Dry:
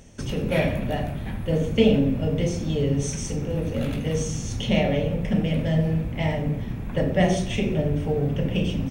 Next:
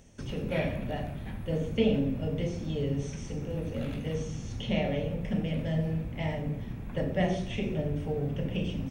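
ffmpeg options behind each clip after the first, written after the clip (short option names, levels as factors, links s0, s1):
-filter_complex "[0:a]acrossover=split=4700[s0][s1];[s1]acompressor=threshold=0.00282:ratio=4:attack=1:release=60[s2];[s0][s2]amix=inputs=2:normalize=0,volume=0.422"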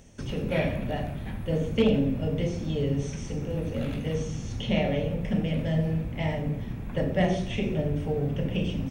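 -af "asoftclip=type=hard:threshold=0.141,volume=1.5"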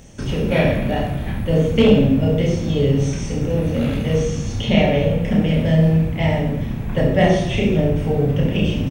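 -af "aecho=1:1:30|67.5|114.4|173|246.2:0.631|0.398|0.251|0.158|0.1,volume=2.51"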